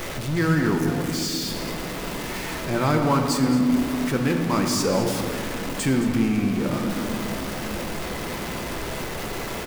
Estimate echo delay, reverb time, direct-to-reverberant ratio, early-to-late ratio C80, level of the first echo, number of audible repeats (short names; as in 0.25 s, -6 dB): 0.217 s, 2.7 s, 2.5 dB, 5.0 dB, -13.0 dB, 1